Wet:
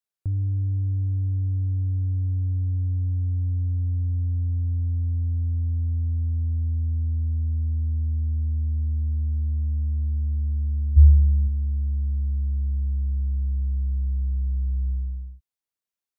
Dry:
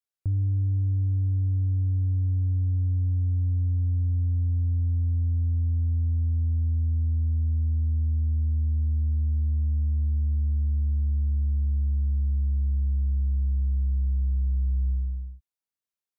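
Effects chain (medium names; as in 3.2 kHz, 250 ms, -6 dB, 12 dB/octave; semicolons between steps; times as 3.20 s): 10.96–11.47 s: peaking EQ 71 Hz -> 120 Hz +15 dB 0.74 oct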